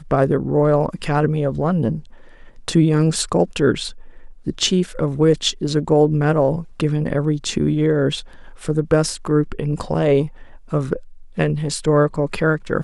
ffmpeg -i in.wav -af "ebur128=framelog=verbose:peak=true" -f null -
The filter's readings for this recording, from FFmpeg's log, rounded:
Integrated loudness:
  I:         -19.2 LUFS
  Threshold: -29.7 LUFS
Loudness range:
  LRA:         2.2 LU
  Threshold: -39.7 LUFS
  LRA low:   -20.9 LUFS
  LRA high:  -18.6 LUFS
True peak:
  Peak:       -3.4 dBFS